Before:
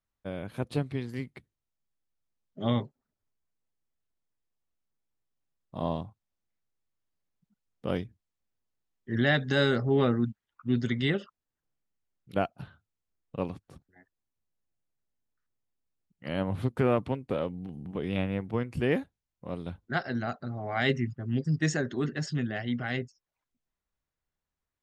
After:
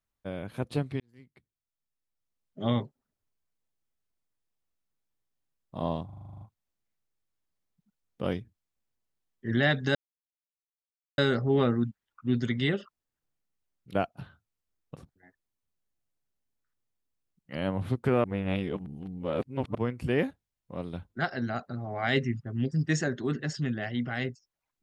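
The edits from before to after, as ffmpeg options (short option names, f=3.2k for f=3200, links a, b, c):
-filter_complex "[0:a]asplit=15[a][b][c][d][e][f][g][h][i][j][k][l][m][n][o];[a]atrim=end=1,asetpts=PTS-STARTPTS,afade=t=out:st=0.996:d=0.004:c=hsin[p];[b]atrim=start=1:end=6.092,asetpts=PTS-STARTPTS,afade=t=in:d=1.64[q];[c]atrim=start=6.048:end=6.092[r];[d]atrim=start=6.048:end=6.092[s];[e]atrim=start=6.048:end=6.092[t];[f]atrim=start=6.048:end=6.092[u];[g]atrim=start=6.048:end=6.092[v];[h]atrim=start=6.048:end=6.092[w];[i]atrim=start=6.048:end=6.092[x];[j]atrim=start=6.048:end=6.092[y];[k]atrim=start=6.048:end=9.59,asetpts=PTS-STARTPTS,afade=t=out:st=3.538:d=0.004:c=hsin,apad=pad_dur=1.23[z];[l]atrim=start=9.59:end=13.372,asetpts=PTS-STARTPTS,afade=t=in:d=0.004:c=hsin[aa];[m]atrim=start=13.688:end=16.972[ab];[n]atrim=start=16.968:end=18.482,asetpts=PTS-STARTPTS,areverse[ac];[o]atrim=start=18.478[ad];[p][q]concat=n=2:v=0:a=1[ae];[ae][r]acrossfade=d=0.004:c1=hsin:c2=hsin[af];[af][s]acrossfade=d=0.004:c1=hsin:c2=hsin[ag];[ag][t]acrossfade=d=0.004:c1=hsin:c2=hsin[ah];[ah][u]acrossfade=d=0.004:c1=hsin:c2=hsin[ai];[ai][v]acrossfade=d=0.004:c1=hsin:c2=hsin[aj];[aj][w]acrossfade=d=0.004:c1=hsin:c2=hsin[ak];[ak][x]acrossfade=d=0.004:c1=hsin:c2=hsin[al];[al][y]acrossfade=d=0.004:c1=hsin:c2=hsin[am];[z][aa]concat=n=2:v=0:a=1[an];[am][an]acrossfade=d=0.004:c1=hsin:c2=hsin[ao];[ao][ab]acrossfade=d=0.004:c1=hsin:c2=hsin[ap];[ap][ac]acrossfade=d=0.004:c1=hsin:c2=hsin[aq];[aq][ad]acrossfade=d=0.004:c1=hsin:c2=hsin"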